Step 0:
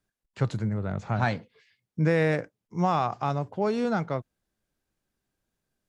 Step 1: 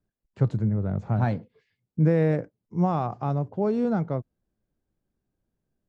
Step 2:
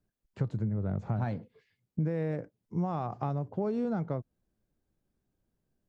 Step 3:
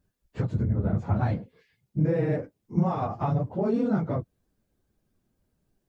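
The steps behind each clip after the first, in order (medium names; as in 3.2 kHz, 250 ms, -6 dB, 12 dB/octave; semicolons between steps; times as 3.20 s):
tilt shelf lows +8.5 dB; trim -4 dB
compression, threshold -28 dBFS, peak gain reduction 12 dB
phase randomisation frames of 50 ms; trim +6 dB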